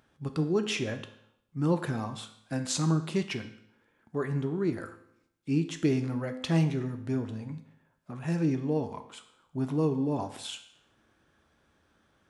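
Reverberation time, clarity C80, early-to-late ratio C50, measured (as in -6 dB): 0.75 s, 14.0 dB, 11.5 dB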